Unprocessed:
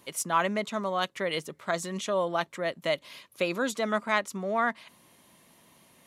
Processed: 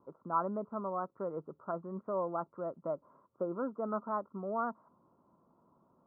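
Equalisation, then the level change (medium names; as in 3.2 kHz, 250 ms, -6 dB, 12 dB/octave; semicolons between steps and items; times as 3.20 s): rippled Chebyshev low-pass 1.4 kHz, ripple 3 dB; -5.0 dB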